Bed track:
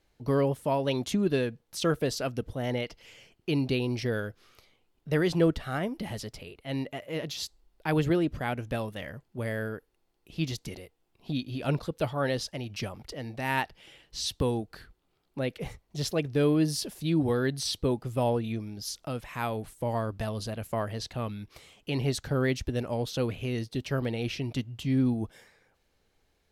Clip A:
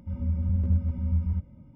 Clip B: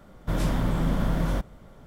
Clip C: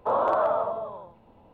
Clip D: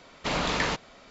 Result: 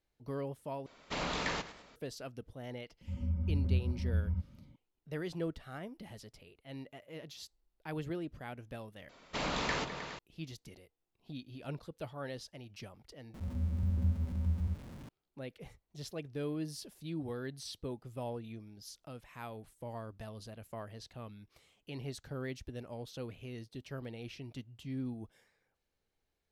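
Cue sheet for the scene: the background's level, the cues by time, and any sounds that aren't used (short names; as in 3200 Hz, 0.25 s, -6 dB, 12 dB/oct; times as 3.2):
bed track -13.5 dB
0.86 replace with D -8.5 dB + warbling echo 0.104 s, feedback 43%, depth 112 cents, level -14 dB
3.01 add A -6.5 dB
9.09 replace with D -7.5 dB + repeats that get brighter 0.104 s, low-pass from 400 Hz, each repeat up 2 oct, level -6 dB
13.34 replace with A -7.5 dB + zero-crossing step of -38 dBFS
not used: B, C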